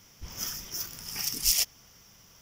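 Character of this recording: noise floor -57 dBFS; spectral tilt +0.5 dB/oct

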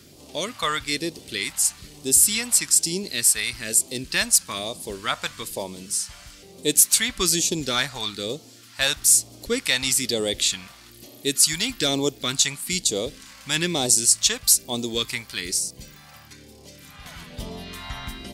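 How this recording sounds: phasing stages 2, 1.1 Hz, lowest notch 350–1500 Hz

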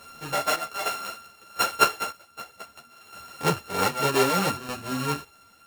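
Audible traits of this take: a buzz of ramps at a fixed pitch in blocks of 32 samples; chopped level 0.64 Hz, depth 65%, duty 35%; a shimmering, thickened sound

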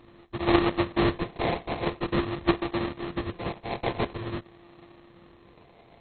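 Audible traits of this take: a buzz of ramps at a fixed pitch in blocks of 128 samples; phasing stages 8, 0.47 Hz, lowest notch 410–1200 Hz; aliases and images of a low sample rate 1500 Hz, jitter 20%; MP2

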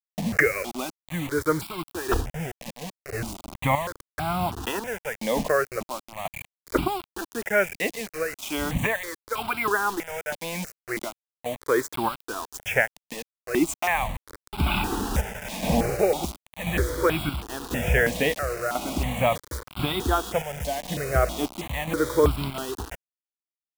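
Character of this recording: chopped level 0.96 Hz, depth 65%, duty 60%; a quantiser's noise floor 6-bit, dither none; notches that jump at a steady rate 3.1 Hz 370–1800 Hz

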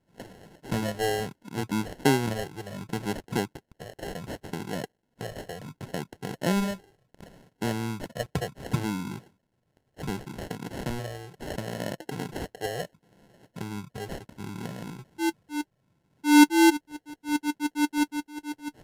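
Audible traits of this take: a quantiser's noise floor 12-bit, dither none; phasing stages 12, 0.69 Hz, lowest notch 230–3400 Hz; aliases and images of a low sample rate 1200 Hz, jitter 0%; Vorbis

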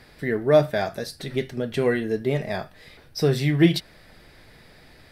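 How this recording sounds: noise floor -52 dBFS; spectral tilt -5.5 dB/oct

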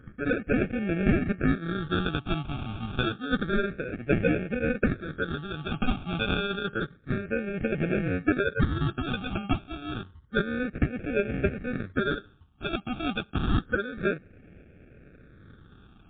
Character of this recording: aliases and images of a low sample rate 1000 Hz, jitter 0%; phasing stages 6, 0.29 Hz, lowest notch 490–1000 Hz; MP3

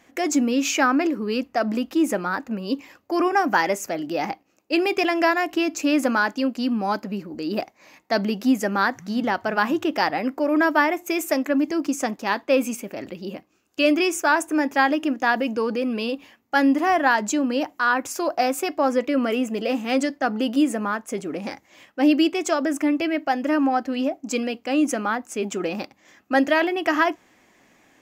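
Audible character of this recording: noise floor -61 dBFS; spectral tilt -3.5 dB/oct

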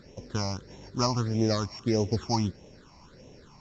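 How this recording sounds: a buzz of ramps at a fixed pitch in blocks of 8 samples; phasing stages 8, 1.6 Hz, lowest notch 450–1400 Hz; µ-law

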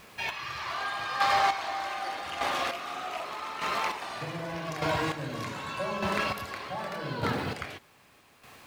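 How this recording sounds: a quantiser's noise floor 10-bit, dither none; chopped level 0.83 Hz, depth 60%, duty 25%

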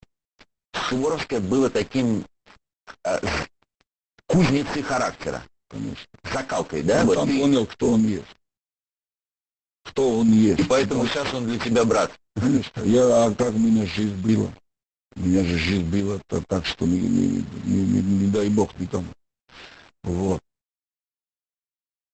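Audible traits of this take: aliases and images of a low sample rate 7000 Hz, jitter 0%; random-step tremolo; a quantiser's noise floor 8-bit, dither none; Opus

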